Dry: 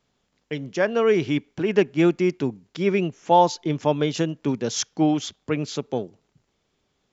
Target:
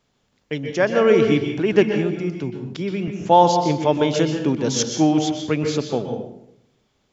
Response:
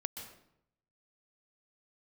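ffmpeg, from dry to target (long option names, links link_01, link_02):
-filter_complex "[0:a]asettb=1/sr,asplit=3[link_01][link_02][link_03];[link_01]atrim=end=1.914[link_04];[link_02]atrim=start=1.91:end=3.08,asetpts=PTS-STARTPTS,afade=type=in:duration=0.004:curve=qsin,afade=type=out:start_time=1.166:duration=0.004:curve=qsin,acrossover=split=160[link_05][link_06];[link_06]acompressor=threshold=-32dB:ratio=3[link_07];[link_05][link_07]amix=inputs=2:normalize=0[link_08];[link_03]atrim=start=3.076[link_09];[link_04][link_08]acrossfade=duration=0.004:curve1=hsin:curve2=qsin[link_10];[link_10][link_09]acrossfade=duration=0.004:curve1=qsin:curve2=hsin[link_11];[1:a]atrim=start_sample=2205[link_12];[link_11][link_12]afir=irnorm=-1:irlink=0,volume=4.5dB"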